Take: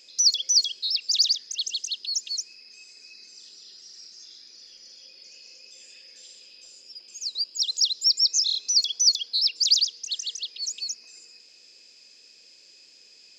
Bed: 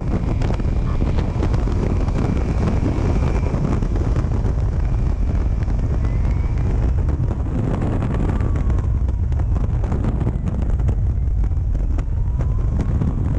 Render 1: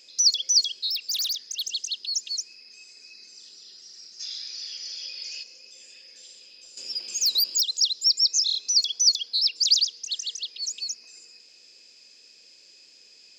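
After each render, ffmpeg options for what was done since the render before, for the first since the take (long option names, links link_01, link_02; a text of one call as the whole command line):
ffmpeg -i in.wav -filter_complex "[0:a]asettb=1/sr,asplit=3[link_01][link_02][link_03];[link_01]atrim=end=0.884[link_04];[link_02]atrim=start=0.88:end=1.73,asetpts=PTS-STARTPTS,afade=type=in:duration=0.004:curve=qsin,afade=type=out:start_time=0.846:duration=0.004:curve=qsin,asoftclip=type=hard:threshold=-24.5dB[link_05];[link_03]atrim=start=1.726[link_06];[link_04][link_05]acrossfade=duration=0.004:curve1=hsin:curve2=qsin[link_07];[link_07][link_06]acrossfade=duration=0.004:curve1=qsin:curve2=hsin,asplit=3[link_08][link_09][link_10];[link_08]afade=type=out:start_time=4.19:duration=0.02[link_11];[link_09]equalizer=frequency=3400:width=0.38:gain=13.5,afade=type=in:start_time=4.19:duration=0.02,afade=type=out:start_time=5.42:duration=0.02[link_12];[link_10]afade=type=in:start_time=5.42:duration=0.02[link_13];[link_11][link_12][link_13]amix=inputs=3:normalize=0,asettb=1/sr,asplit=3[link_14][link_15][link_16];[link_14]atrim=end=6.774[link_17];[link_15]atrim=start=6.77:end=7.61,asetpts=PTS-STARTPTS,afade=type=in:duration=0.004:curve=qsin,afade=type=out:start_time=0.836:duration=0.004:curve=qsin,aeval=exprs='0.133*sin(PI/2*2.51*val(0)/0.133)':channel_layout=same[link_18];[link_16]atrim=start=7.606[link_19];[link_17][link_18]acrossfade=duration=0.004:curve1=hsin:curve2=qsin[link_20];[link_20][link_19]acrossfade=duration=0.004:curve1=qsin:curve2=hsin" out.wav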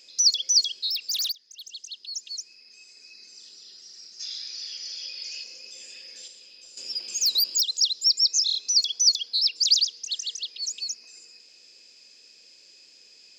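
ffmpeg -i in.wav -filter_complex "[0:a]asplit=4[link_01][link_02][link_03][link_04];[link_01]atrim=end=1.32,asetpts=PTS-STARTPTS,afade=type=out:start_time=1.316:duration=0.004:curve=hsin:silence=0.11885[link_05];[link_02]atrim=start=1.32:end=5.432,asetpts=PTS-STARTPTS,afade=type=in:duration=2.05:silence=0.11885[link_06];[link_03]atrim=start=5.428:end=6.282,asetpts=PTS-STARTPTS,volume=5dB[link_07];[link_04]atrim=start=6.278[link_08];[link_05][link_06]concat=n=2:v=0:a=1[link_09];[link_09][link_07]acrossfade=duration=0.004:curve1=hsin:curve2=hsin[link_10];[link_10][link_08]acrossfade=duration=0.004:curve1=hsin:curve2=hsin" out.wav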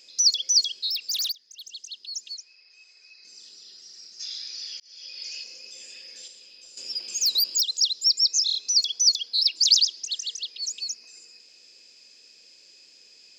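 ffmpeg -i in.wav -filter_complex "[0:a]asettb=1/sr,asplit=3[link_01][link_02][link_03];[link_01]atrim=end=2.344[link_04];[link_02]atrim=start=2.34:end=3.25,asetpts=PTS-STARTPTS,afade=type=in:duration=0.004:curve=qsin,afade=type=out:start_time=0.906:duration=0.004:curve=qsin,highpass=640,lowpass=4300[link_05];[link_03]atrim=start=3.246[link_06];[link_04][link_05]acrossfade=duration=0.004:curve1=hsin:curve2=qsin[link_07];[link_07][link_06]acrossfade=duration=0.004:curve1=qsin:curve2=hsin,asettb=1/sr,asplit=3[link_08][link_09][link_10];[link_08]atrim=end=9.384[link_11];[link_09]atrim=start=9.38:end=10.06,asetpts=PTS-STARTPTS,afade=type=in:duration=0.004:curve=qsin,afade=type=out:start_time=0.676:duration=0.004:curve=qsin,aecho=1:1:3.1:0.89,atrim=end_sample=29988[link_12];[link_10]atrim=start=10.056[link_13];[link_11][link_12]acrossfade=duration=0.004:curve1=hsin:curve2=qsin[link_14];[link_14][link_13]acrossfade=duration=0.004:curve1=qsin:curve2=hsin,asplit=2[link_15][link_16];[link_15]atrim=end=4.8,asetpts=PTS-STARTPTS,afade=type=out:start_time=4.796:duration=0.004:curve=hsin[link_17];[link_16]atrim=start=4.8,asetpts=PTS-STARTPTS,afade=type=in:duration=0.45[link_18];[link_17][link_18]concat=n=2:v=0:a=1" out.wav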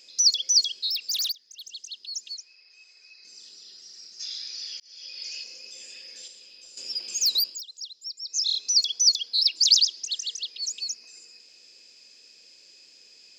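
ffmpeg -i in.wav -filter_complex "[0:a]asplit=3[link_01][link_02][link_03];[link_01]atrim=end=7.6,asetpts=PTS-STARTPTS,afade=type=out:start_time=7.36:duration=0.24:silence=0.158489[link_04];[link_02]atrim=start=7.6:end=8.25,asetpts=PTS-STARTPTS,volume=-16dB[link_05];[link_03]atrim=start=8.25,asetpts=PTS-STARTPTS,afade=type=in:duration=0.24:silence=0.158489[link_06];[link_04][link_05][link_06]concat=n=3:v=0:a=1" out.wav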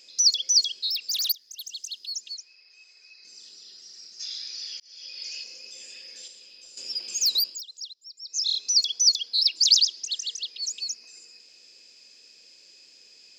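ffmpeg -i in.wav -filter_complex "[0:a]asettb=1/sr,asplit=3[link_01][link_02][link_03];[link_01]atrim=end=1.294[link_04];[link_02]atrim=start=1.29:end=2.13,asetpts=PTS-STARTPTS,afade=type=in:duration=0.004:curve=qsin,afade=type=out:start_time=0.836:duration=0.004:curve=qsin,equalizer=frequency=13000:width=0.62:gain=15[link_05];[link_03]atrim=start=2.126[link_06];[link_04][link_05]acrossfade=duration=0.004:curve1=hsin:curve2=qsin[link_07];[link_07][link_06]acrossfade=duration=0.004:curve1=qsin:curve2=hsin,asplit=2[link_08][link_09];[link_08]atrim=end=7.94,asetpts=PTS-STARTPTS,afade=type=out:start_time=7.936:duration=0.004:curve=hsin:silence=0.149624[link_10];[link_09]atrim=start=7.94,asetpts=PTS-STARTPTS,afade=type=in:duration=0.54:silence=0.149624[link_11];[link_10][link_11]concat=n=2:v=0:a=1" out.wav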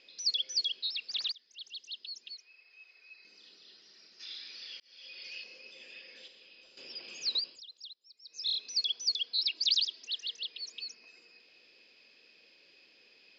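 ffmpeg -i in.wav -af "lowpass=frequency=3500:width=0.5412,lowpass=frequency=3500:width=1.3066,lowshelf=frequency=72:gain=-10.5" out.wav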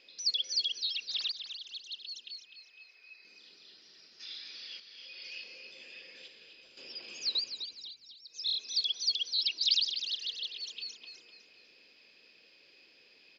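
ffmpeg -i in.wav -filter_complex "[0:a]asplit=5[link_01][link_02][link_03][link_04][link_05];[link_02]adelay=252,afreqshift=-62,volume=-9dB[link_06];[link_03]adelay=504,afreqshift=-124,volume=-17.9dB[link_07];[link_04]adelay=756,afreqshift=-186,volume=-26.7dB[link_08];[link_05]adelay=1008,afreqshift=-248,volume=-35.6dB[link_09];[link_01][link_06][link_07][link_08][link_09]amix=inputs=5:normalize=0" out.wav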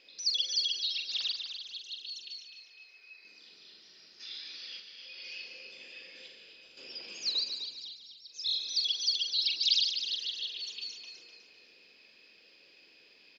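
ffmpeg -i in.wav -filter_complex "[0:a]asplit=2[link_01][link_02];[link_02]adelay=44,volume=-7dB[link_03];[link_01][link_03]amix=inputs=2:normalize=0,asplit=2[link_04][link_05];[link_05]aecho=0:1:144:0.335[link_06];[link_04][link_06]amix=inputs=2:normalize=0" out.wav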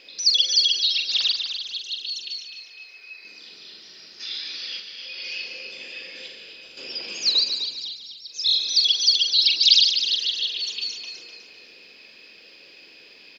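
ffmpeg -i in.wav -af "volume=11.5dB" out.wav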